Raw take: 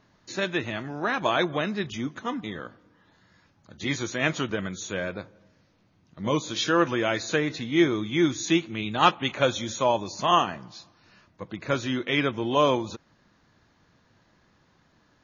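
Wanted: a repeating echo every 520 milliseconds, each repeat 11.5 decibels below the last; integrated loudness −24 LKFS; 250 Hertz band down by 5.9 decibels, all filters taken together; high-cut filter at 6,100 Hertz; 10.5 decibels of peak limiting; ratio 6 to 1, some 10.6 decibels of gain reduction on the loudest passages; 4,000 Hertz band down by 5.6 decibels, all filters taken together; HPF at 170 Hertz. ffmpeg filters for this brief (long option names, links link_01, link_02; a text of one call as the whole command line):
ffmpeg -i in.wav -af "highpass=170,lowpass=6100,equalizer=frequency=250:width_type=o:gain=-8,equalizer=frequency=4000:width_type=o:gain=-7,acompressor=threshold=-27dB:ratio=6,alimiter=limit=-24dB:level=0:latency=1,aecho=1:1:520|1040|1560:0.266|0.0718|0.0194,volume=12.5dB" out.wav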